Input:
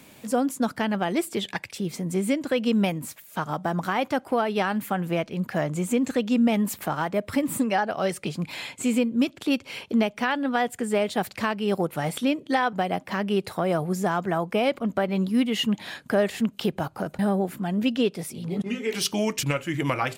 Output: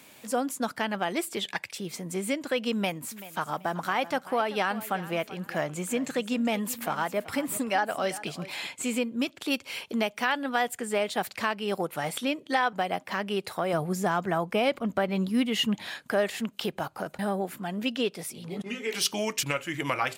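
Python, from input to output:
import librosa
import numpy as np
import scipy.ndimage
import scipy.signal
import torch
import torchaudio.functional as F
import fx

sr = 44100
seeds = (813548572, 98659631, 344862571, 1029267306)

y = fx.echo_feedback(x, sr, ms=384, feedback_pct=24, wet_db=-16.0, at=(2.73, 8.67))
y = fx.high_shelf(y, sr, hz=8000.0, db=7.0, at=(9.45, 10.74))
y = fx.low_shelf(y, sr, hz=220.0, db=9.0, at=(13.73, 15.87))
y = fx.low_shelf(y, sr, hz=380.0, db=-10.5)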